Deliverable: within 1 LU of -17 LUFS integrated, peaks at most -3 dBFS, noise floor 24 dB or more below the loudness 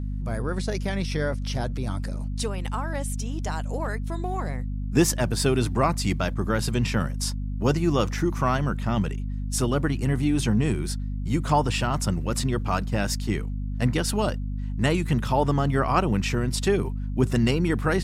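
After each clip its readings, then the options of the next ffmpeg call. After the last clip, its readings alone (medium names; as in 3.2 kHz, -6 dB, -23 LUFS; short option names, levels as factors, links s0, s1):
hum 50 Hz; highest harmonic 250 Hz; hum level -27 dBFS; loudness -25.5 LUFS; peak level -7.5 dBFS; loudness target -17.0 LUFS
-> -af "bandreject=f=50:t=h:w=6,bandreject=f=100:t=h:w=6,bandreject=f=150:t=h:w=6,bandreject=f=200:t=h:w=6,bandreject=f=250:t=h:w=6"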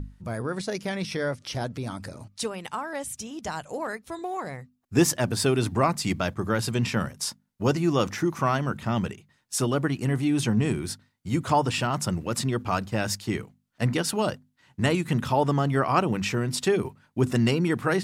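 hum not found; loudness -27.0 LUFS; peak level -8.0 dBFS; loudness target -17.0 LUFS
-> -af "volume=3.16,alimiter=limit=0.708:level=0:latency=1"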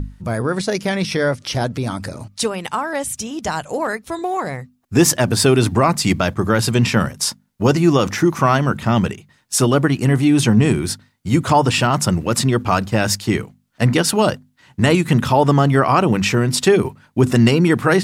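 loudness -17.5 LUFS; peak level -3.0 dBFS; noise floor -60 dBFS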